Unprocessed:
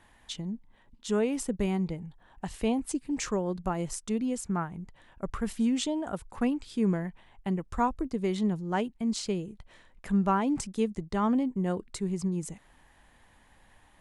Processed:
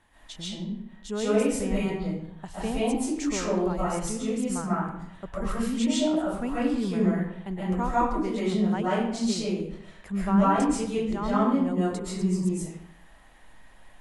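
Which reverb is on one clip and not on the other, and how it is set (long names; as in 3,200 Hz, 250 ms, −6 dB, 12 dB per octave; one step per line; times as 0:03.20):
comb and all-pass reverb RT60 0.74 s, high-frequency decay 0.75×, pre-delay 95 ms, DRR −9 dB
level −4.5 dB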